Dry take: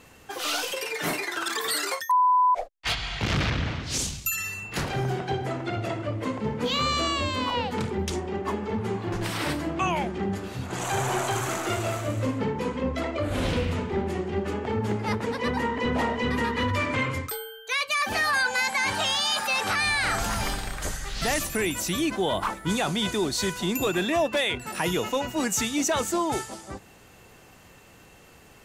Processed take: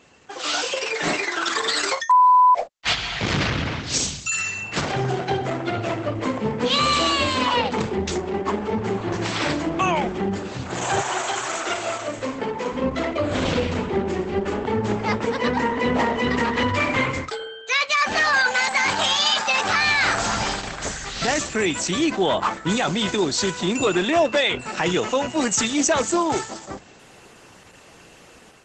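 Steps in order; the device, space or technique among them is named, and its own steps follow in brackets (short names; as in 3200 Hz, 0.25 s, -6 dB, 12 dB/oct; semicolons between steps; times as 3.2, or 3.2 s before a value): 11–12.71 HPF 930 Hz -> 420 Hz 6 dB/oct; video call (HPF 160 Hz 6 dB/oct; AGC gain up to 6.5 dB; Opus 12 kbps 48000 Hz)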